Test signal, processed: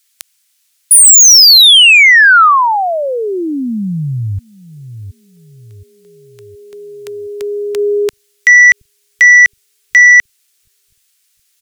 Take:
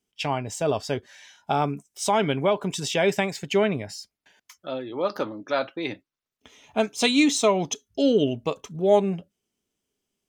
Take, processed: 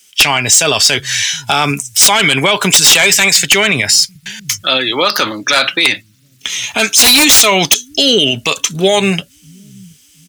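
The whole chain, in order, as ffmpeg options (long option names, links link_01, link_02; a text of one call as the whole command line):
ffmpeg -i in.wav -filter_complex "[0:a]equalizer=frequency=8500:width=0.57:gain=4.5,acrossover=split=130|1600[link_01][link_02][link_03];[link_01]aecho=1:1:721|1442|2163|2884|3605:0.447|0.183|0.0751|0.0308|0.0126[link_04];[link_03]aeval=exprs='0.398*sin(PI/2*7.08*val(0)/0.398)':channel_layout=same[link_05];[link_04][link_02][link_05]amix=inputs=3:normalize=0,alimiter=level_in=13.5dB:limit=-1dB:release=50:level=0:latency=1,volume=-1dB" out.wav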